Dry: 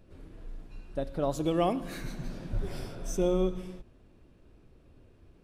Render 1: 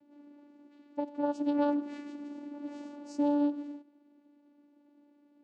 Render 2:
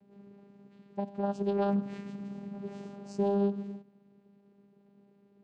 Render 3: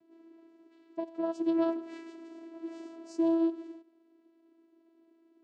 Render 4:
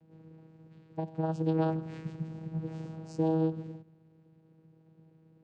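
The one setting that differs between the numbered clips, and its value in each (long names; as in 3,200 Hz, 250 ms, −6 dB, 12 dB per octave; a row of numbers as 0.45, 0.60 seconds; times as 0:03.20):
channel vocoder, frequency: 290, 200, 330, 160 Hertz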